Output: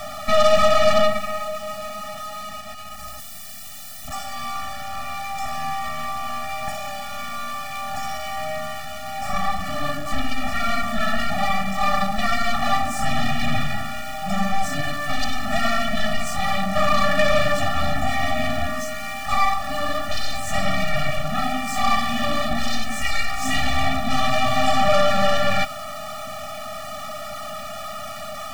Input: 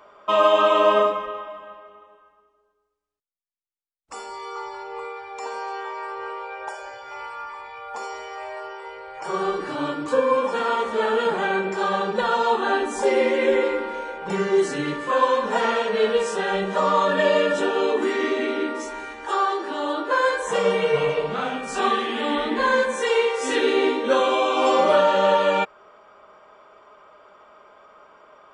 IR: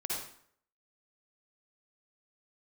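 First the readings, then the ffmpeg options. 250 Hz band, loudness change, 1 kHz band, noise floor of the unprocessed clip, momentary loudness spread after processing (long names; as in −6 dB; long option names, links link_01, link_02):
0.0 dB, −2.0 dB, 0.0 dB, −68 dBFS, 13 LU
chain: -af "aeval=exprs='val(0)+0.5*0.0562*sgn(val(0))':channel_layout=same,aeval=exprs='0.562*(cos(1*acos(clip(val(0)/0.562,-1,1)))-cos(1*PI/2))+0.126*(cos(8*acos(clip(val(0)/0.562,-1,1)))-cos(8*PI/2))':channel_layout=same,afftfilt=real='re*eq(mod(floor(b*sr/1024/280),2),0)':imag='im*eq(mod(floor(b*sr/1024/280),2),0)':win_size=1024:overlap=0.75"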